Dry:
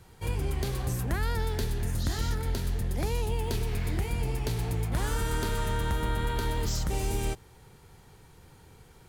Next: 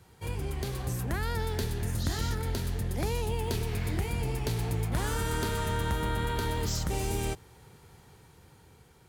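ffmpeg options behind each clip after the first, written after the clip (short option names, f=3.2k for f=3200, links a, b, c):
-af "highpass=54,dynaudnorm=f=330:g=7:m=3dB,volume=-2.5dB"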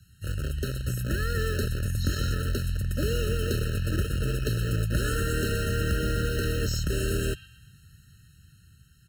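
-filter_complex "[0:a]acrossover=split=200|1600|3800[a][b][c][d];[b]acrusher=bits=5:mix=0:aa=0.000001[e];[c]aecho=1:1:125|250|375|500|625:0.501|0.205|0.0842|0.0345|0.0142[f];[a][e][f][d]amix=inputs=4:normalize=0,afftfilt=real='re*eq(mod(floor(b*sr/1024/630),2),0)':imag='im*eq(mod(floor(b*sr/1024/630),2),0)':win_size=1024:overlap=0.75,volume=4dB"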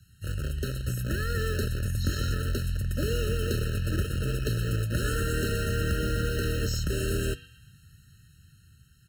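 -af "flanger=delay=8:depth=2.1:regen=-86:speed=0.36:shape=triangular,volume=3.5dB"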